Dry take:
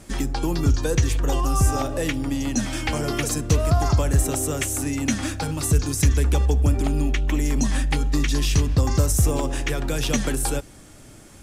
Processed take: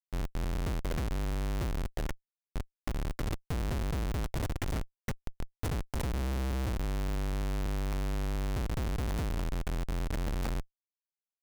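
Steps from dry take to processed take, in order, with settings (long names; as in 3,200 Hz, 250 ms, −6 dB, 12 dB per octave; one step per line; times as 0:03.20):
phaser with its sweep stopped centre 1,000 Hz, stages 6
comparator with hysteresis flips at −20.5 dBFS
level −8.5 dB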